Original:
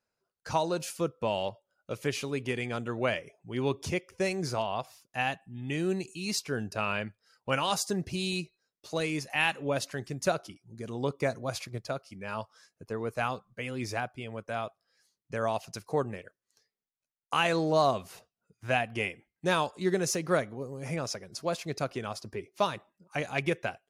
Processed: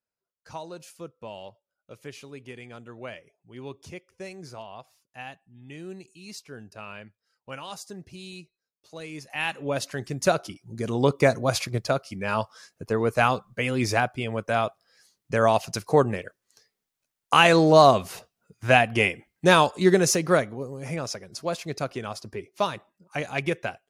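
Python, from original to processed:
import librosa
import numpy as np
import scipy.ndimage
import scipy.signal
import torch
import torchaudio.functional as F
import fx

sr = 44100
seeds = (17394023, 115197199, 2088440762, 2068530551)

y = fx.gain(x, sr, db=fx.line((8.95, -9.5), (9.61, 1.5), (10.83, 10.0), (19.83, 10.0), (20.86, 2.5)))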